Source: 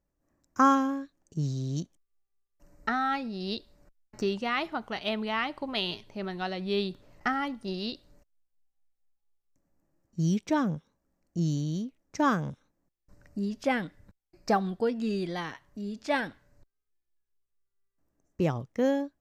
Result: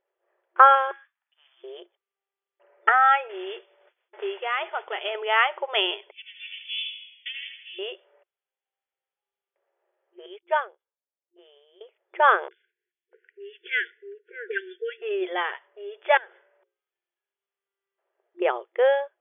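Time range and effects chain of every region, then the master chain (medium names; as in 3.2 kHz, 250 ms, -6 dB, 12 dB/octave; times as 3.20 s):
0.91–1.64 s: Bessel high-pass 1.7 kHz, order 8 + distance through air 180 m
3.29–5.15 s: compression 4:1, threshold -32 dBFS + modulation noise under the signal 11 dB
6.11–7.79 s: comb filter that takes the minimum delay 2.6 ms + steep high-pass 2.4 kHz 48 dB/octave + frequency-shifting echo 80 ms, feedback 52%, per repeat -33 Hz, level -6 dB
10.26–11.81 s: bass shelf 220 Hz -10.5 dB + upward expansion 2.5:1, over -43 dBFS
12.48–15.02 s: brick-wall FIR band-stop 490–1400 Hz + bass shelf 220 Hz -6.5 dB + three bands offset in time lows, highs, mids 30/650 ms, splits 400/1300 Hz
16.17–18.42 s: hum notches 60/120/180/240/300/360/420/480/540 Hz + compression 16:1, threshold -48 dBFS
whole clip: FFT band-pass 350–3500 Hz; band-stop 1.1 kHz, Q 14; dynamic bell 1.4 kHz, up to +5 dB, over -40 dBFS, Q 1; trim +7.5 dB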